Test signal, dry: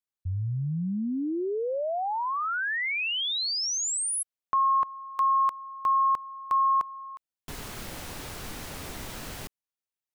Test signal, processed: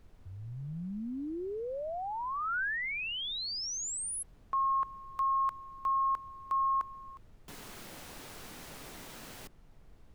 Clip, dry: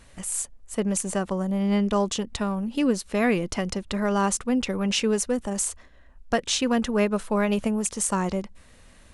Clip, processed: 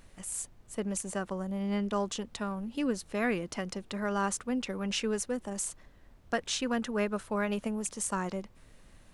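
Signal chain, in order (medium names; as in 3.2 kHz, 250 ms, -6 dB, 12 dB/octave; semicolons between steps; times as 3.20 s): high-pass 140 Hz 12 dB/octave; dynamic bell 1.5 kHz, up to +5 dB, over -40 dBFS, Q 2.2; added noise brown -47 dBFS; trim -8 dB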